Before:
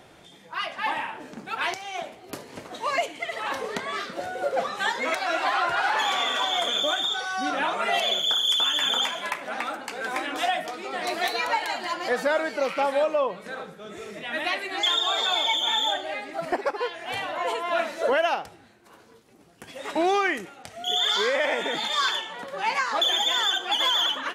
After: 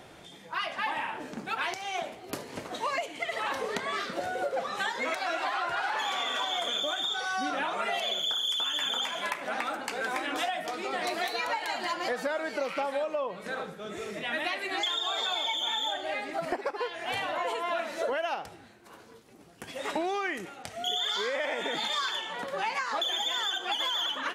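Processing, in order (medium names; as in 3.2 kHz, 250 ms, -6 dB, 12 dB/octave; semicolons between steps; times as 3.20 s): compression, threshold -29 dBFS, peak gain reduction 10 dB; trim +1 dB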